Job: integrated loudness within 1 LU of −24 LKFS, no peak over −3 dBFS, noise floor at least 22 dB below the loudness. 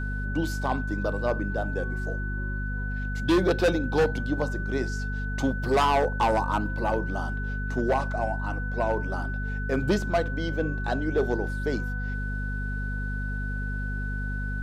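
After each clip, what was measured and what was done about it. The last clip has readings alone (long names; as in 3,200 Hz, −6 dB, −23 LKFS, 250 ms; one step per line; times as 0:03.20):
mains hum 50 Hz; hum harmonics up to 250 Hz; level of the hum −28 dBFS; interfering tone 1,500 Hz; level of the tone −35 dBFS; integrated loudness −28.0 LKFS; sample peak −14.0 dBFS; target loudness −24.0 LKFS
→ hum removal 50 Hz, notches 5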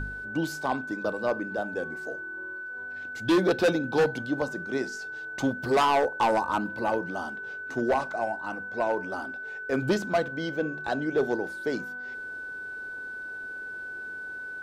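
mains hum none found; interfering tone 1,500 Hz; level of the tone −35 dBFS
→ notch filter 1,500 Hz, Q 30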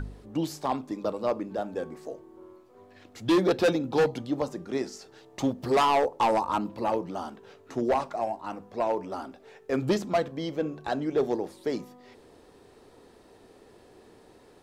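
interfering tone none found; integrated loudness −28.5 LKFS; sample peak −16.0 dBFS; target loudness −24.0 LKFS
→ level +4.5 dB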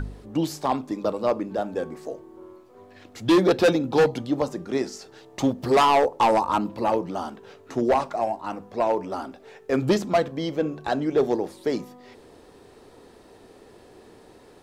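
integrated loudness −24.0 LKFS; sample peak −11.5 dBFS; background noise floor −51 dBFS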